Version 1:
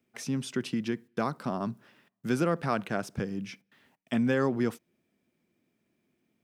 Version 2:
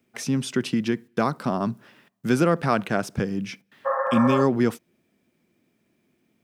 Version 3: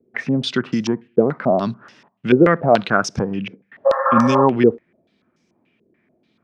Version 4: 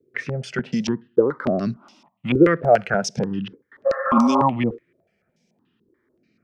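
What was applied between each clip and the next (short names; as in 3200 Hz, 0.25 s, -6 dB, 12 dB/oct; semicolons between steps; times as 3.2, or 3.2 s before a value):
spectral repair 3.88–4.39, 450–2100 Hz after; gain +7 dB
stepped low-pass 6.9 Hz 440–5800 Hz; gain +3 dB
step phaser 3.4 Hz 210–3400 Hz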